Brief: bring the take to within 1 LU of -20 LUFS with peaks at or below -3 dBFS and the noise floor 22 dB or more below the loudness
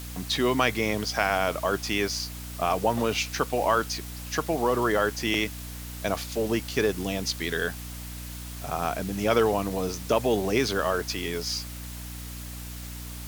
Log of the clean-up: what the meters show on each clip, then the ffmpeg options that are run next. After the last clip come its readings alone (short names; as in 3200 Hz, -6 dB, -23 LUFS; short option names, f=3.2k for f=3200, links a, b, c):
hum 60 Hz; harmonics up to 300 Hz; hum level -37 dBFS; noise floor -38 dBFS; noise floor target -49 dBFS; loudness -27.0 LUFS; peak -7.5 dBFS; loudness target -20.0 LUFS
-> -af "bandreject=f=60:t=h:w=4,bandreject=f=120:t=h:w=4,bandreject=f=180:t=h:w=4,bandreject=f=240:t=h:w=4,bandreject=f=300:t=h:w=4"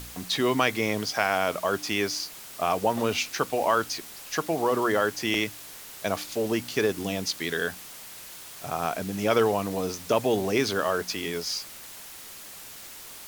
hum none; noise floor -44 dBFS; noise floor target -49 dBFS
-> -af "afftdn=nr=6:nf=-44"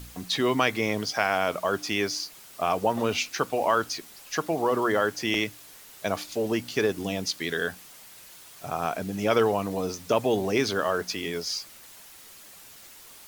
noise floor -49 dBFS; loudness -27.0 LUFS; peak -7.5 dBFS; loudness target -20.0 LUFS
-> -af "volume=7dB,alimiter=limit=-3dB:level=0:latency=1"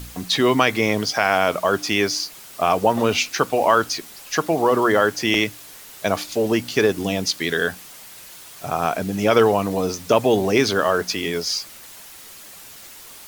loudness -20.0 LUFS; peak -3.0 dBFS; noise floor -42 dBFS